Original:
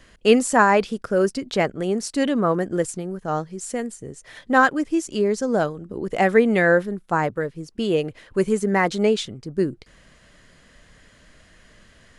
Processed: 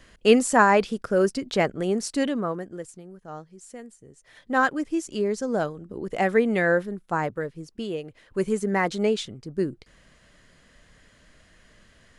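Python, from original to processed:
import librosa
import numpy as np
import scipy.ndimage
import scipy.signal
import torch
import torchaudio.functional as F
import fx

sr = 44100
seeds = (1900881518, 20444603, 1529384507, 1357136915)

y = fx.gain(x, sr, db=fx.line((2.14, -1.5), (2.79, -14.0), (4.08, -14.0), (4.66, -4.5), (7.7, -4.5), (8.02, -12.0), (8.45, -4.0)))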